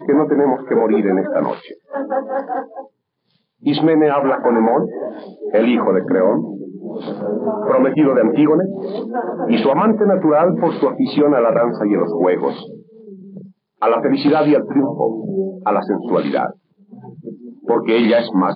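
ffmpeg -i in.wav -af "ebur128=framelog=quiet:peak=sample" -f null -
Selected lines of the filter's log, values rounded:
Integrated loudness:
  I:         -16.6 LUFS
  Threshold: -27.5 LUFS
Loudness range:
  LRA:         4.4 LU
  Threshold: -37.5 LUFS
  LRA low:   -19.9 LUFS
  LRA high:  -15.5 LUFS
Sample peak:
  Peak:       -5.0 dBFS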